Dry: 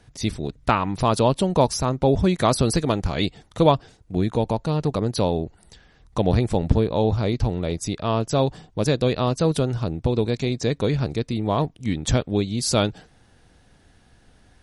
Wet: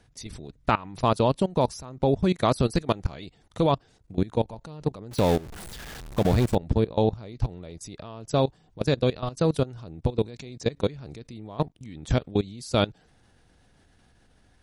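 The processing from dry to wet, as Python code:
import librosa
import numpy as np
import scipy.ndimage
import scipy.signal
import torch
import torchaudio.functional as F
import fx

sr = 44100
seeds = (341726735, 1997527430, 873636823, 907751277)

y = fx.zero_step(x, sr, step_db=-23.0, at=(5.11, 6.55))
y = fx.level_steps(y, sr, step_db=20)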